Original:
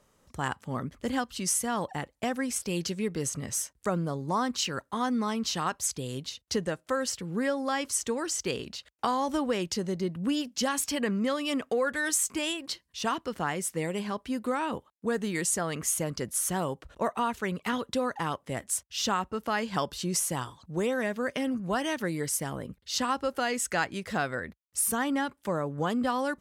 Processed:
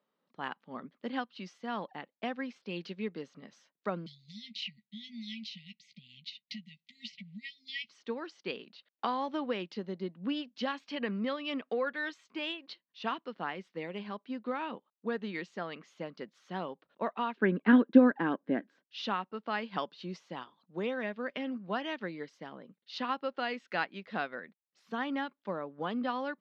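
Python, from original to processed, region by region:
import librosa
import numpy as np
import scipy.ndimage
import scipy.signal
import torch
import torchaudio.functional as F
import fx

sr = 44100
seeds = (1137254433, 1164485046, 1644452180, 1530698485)

y = fx.chain(x, sr, fx.brickwall_bandstop(low_hz=230.0, high_hz=1900.0),
    fx.doubler(ms=14.0, db=-10),
    fx.band_squash(depth_pct=100), at=(4.06, 7.89))
y = fx.chain(y, sr, fx.lowpass(hz=3200.0, slope=6),
    fx.high_shelf(hz=2400.0, db=-7.5),
    fx.small_body(hz=(280.0, 1600.0), ring_ms=20, db=15), at=(17.37, 18.87))
y = scipy.signal.sosfilt(scipy.signal.ellip(3, 1.0, 40, [190.0, 4100.0], 'bandpass', fs=sr, output='sos'), y)
y = fx.dynamic_eq(y, sr, hz=2500.0, q=2.3, threshold_db=-47.0, ratio=4.0, max_db=4)
y = fx.upward_expand(y, sr, threshold_db=-46.0, expansion=1.5)
y = y * 10.0 ** (1.0 / 20.0)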